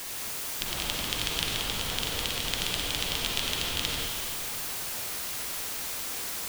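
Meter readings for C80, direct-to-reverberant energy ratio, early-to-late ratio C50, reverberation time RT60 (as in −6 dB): 0.0 dB, −2.0 dB, −1.5 dB, 2.5 s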